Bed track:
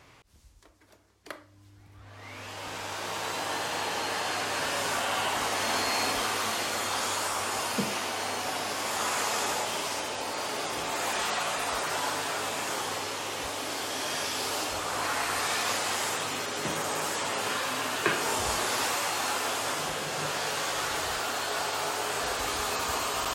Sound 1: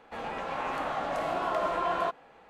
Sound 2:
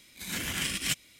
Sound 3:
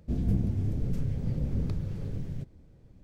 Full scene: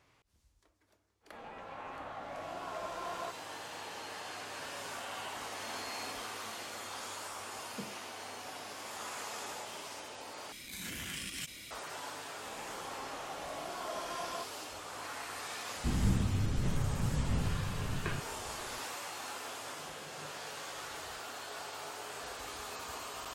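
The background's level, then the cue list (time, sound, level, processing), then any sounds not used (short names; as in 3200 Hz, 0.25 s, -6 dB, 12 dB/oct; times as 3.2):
bed track -13 dB
1.2 add 1 -12 dB, fades 0.05 s
10.52 replace with 2 -13.5 dB + fast leveller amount 70%
12.33 add 1 -12 dB
15.76 add 3 -3 dB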